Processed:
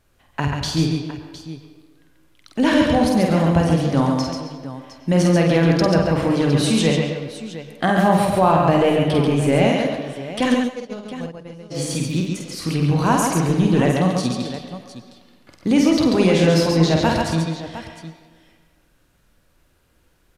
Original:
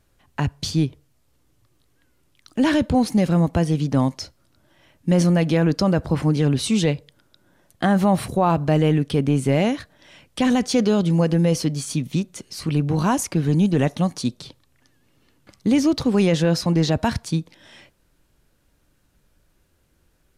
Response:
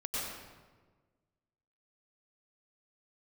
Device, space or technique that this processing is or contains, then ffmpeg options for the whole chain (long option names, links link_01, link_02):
filtered reverb send: -filter_complex "[0:a]bandreject=frequency=50:width_type=h:width=6,bandreject=frequency=100:width_type=h:width=6,bandreject=frequency=150:width_type=h:width=6,bandreject=frequency=200:width_type=h:width=6,asplit=2[link_01][link_02];[link_02]highpass=370,lowpass=4800[link_03];[1:a]atrim=start_sample=2205[link_04];[link_03][link_04]afir=irnorm=-1:irlink=0,volume=-7.5dB[link_05];[link_01][link_05]amix=inputs=2:normalize=0,asplit=3[link_06][link_07][link_08];[link_06]afade=type=out:start_time=10.54:duration=0.02[link_09];[link_07]agate=range=-37dB:threshold=-13dB:ratio=16:detection=peak,afade=type=in:start_time=10.54:duration=0.02,afade=type=out:start_time=11.7:duration=0.02[link_10];[link_08]afade=type=in:start_time=11.7:duration=0.02[link_11];[link_09][link_10][link_11]amix=inputs=3:normalize=0,aecho=1:1:49|138|268|710:0.631|0.631|0.126|0.211"